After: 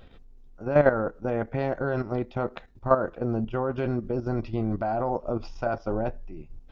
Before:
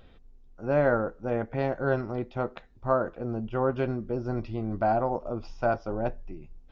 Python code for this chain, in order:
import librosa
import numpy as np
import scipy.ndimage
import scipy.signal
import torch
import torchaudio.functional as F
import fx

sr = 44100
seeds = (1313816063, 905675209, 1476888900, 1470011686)

y = fx.level_steps(x, sr, step_db=11)
y = y * 10.0 ** (6.5 / 20.0)